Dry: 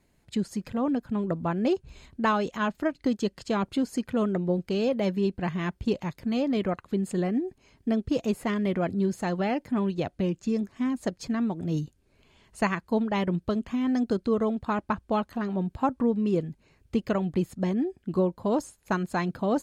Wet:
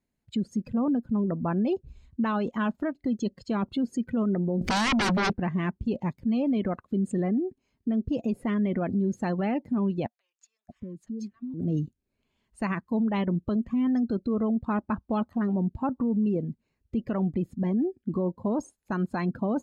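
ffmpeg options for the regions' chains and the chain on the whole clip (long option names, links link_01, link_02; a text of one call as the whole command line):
ffmpeg -i in.wav -filter_complex "[0:a]asettb=1/sr,asplit=3[link_01][link_02][link_03];[link_01]atrim=end=4.614[link_04];[link_02]atrim=start=4.61:end=5.33,asetpts=PTS-STARTPTS,afade=type=in:duration=0.004:curve=qsin,afade=type=out:start_time=0.716:duration=0.004:curve=qsin,acompressor=mode=upward:threshold=-34dB:ratio=2.5:attack=3.2:release=140:knee=2.83:detection=peak,aeval=exprs='0.168*sin(PI/2*6.31*val(0)/0.168)':channel_layout=same[link_05];[link_03]atrim=start=5.326[link_06];[link_04][link_05]acrossfade=duration=0.004:curve1=hsin:curve2=qsin[link_07];[link_07][link_06]acrossfade=duration=0.004:curve1=qsin:curve2=hsin,asettb=1/sr,asplit=3[link_08][link_09][link_10];[link_08]atrim=end=10.064[link_11];[link_09]atrim=start=10.06:end=11.54,asetpts=PTS-STARTPTS,afade=type=in:duration=0.004:curve=qsin,afade=type=out:start_time=1.476:duration=0.004:curve=qsin,acompressor=threshold=-42dB:ratio=4:attack=3.2:release=140:knee=1:detection=peak,acrossover=split=940[link_12][link_13];[link_12]adelay=630[link_14];[link_14][link_13]amix=inputs=2:normalize=0,atrim=end_sample=65268[link_15];[link_10]atrim=start=11.536[link_16];[link_11][link_15]acrossfade=duration=0.004:curve1=hsin:curve2=qsin[link_17];[link_17][link_16]acrossfade=duration=0.004:curve1=qsin:curve2=hsin,afftdn=noise_reduction=18:noise_floor=-39,equalizer=frequency=230:width=3.3:gain=7,alimiter=limit=-21.5dB:level=0:latency=1:release=39,volume=1.5dB" out.wav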